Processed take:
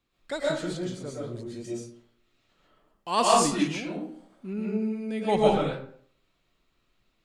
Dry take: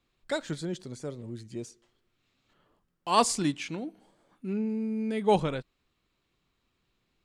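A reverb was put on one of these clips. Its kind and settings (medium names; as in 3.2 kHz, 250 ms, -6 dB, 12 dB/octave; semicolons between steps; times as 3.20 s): algorithmic reverb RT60 0.57 s, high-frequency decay 0.6×, pre-delay 85 ms, DRR -5.5 dB; trim -2.5 dB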